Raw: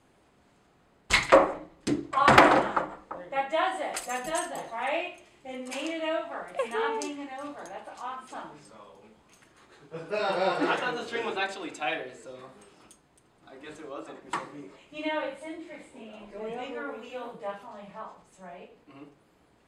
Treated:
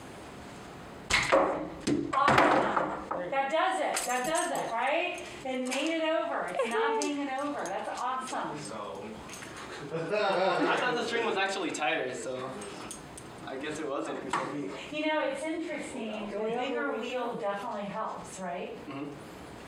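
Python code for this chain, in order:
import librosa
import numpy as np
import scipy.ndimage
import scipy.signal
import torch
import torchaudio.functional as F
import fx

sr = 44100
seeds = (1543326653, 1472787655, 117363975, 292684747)

y = scipy.signal.sosfilt(scipy.signal.butter(2, 48.0, 'highpass', fs=sr, output='sos'), x)
y = fx.env_flatten(y, sr, amount_pct=50)
y = y * librosa.db_to_amplitude(-7.5)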